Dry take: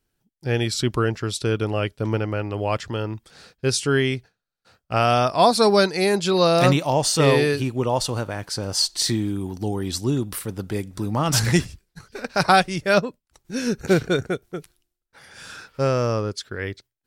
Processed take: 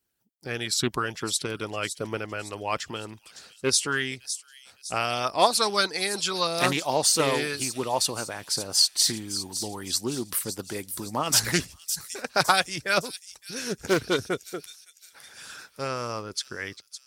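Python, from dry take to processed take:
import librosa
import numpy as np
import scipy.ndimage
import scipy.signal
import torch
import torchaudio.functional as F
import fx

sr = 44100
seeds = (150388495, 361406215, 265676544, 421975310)

y = scipy.signal.sosfilt(scipy.signal.butter(2, 56.0, 'highpass', fs=sr, output='sos'), x)
y = fx.high_shelf(y, sr, hz=8200.0, db=8.0)
y = fx.hpss(y, sr, part='harmonic', gain_db=-11)
y = fx.low_shelf(y, sr, hz=490.0, db=-4.5)
y = fx.echo_wet_highpass(y, sr, ms=560, feedback_pct=46, hz=5300.0, wet_db=-7)
y = fx.doppler_dist(y, sr, depth_ms=0.15)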